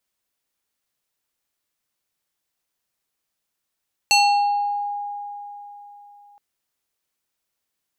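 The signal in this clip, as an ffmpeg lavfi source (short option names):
-f lavfi -i "aevalsrc='0.266*pow(10,-3*t/3.69)*sin(2*PI*818*t+1.8*pow(10,-3*t/0.94)*sin(2*PI*4.32*818*t))':d=2.27:s=44100"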